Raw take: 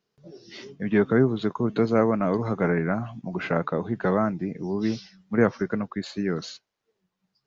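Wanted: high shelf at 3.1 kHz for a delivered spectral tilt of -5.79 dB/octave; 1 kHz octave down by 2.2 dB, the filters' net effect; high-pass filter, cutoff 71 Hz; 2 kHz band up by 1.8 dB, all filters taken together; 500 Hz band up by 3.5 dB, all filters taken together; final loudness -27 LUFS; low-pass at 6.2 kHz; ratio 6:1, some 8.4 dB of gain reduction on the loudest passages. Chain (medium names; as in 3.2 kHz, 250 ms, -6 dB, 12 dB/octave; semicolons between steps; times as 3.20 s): high-pass 71 Hz; low-pass 6.2 kHz; peaking EQ 500 Hz +5.5 dB; peaking EQ 1 kHz -7 dB; peaking EQ 2 kHz +3.5 dB; treble shelf 3.1 kHz +4.5 dB; compression 6:1, threshold -21 dBFS; trim +1 dB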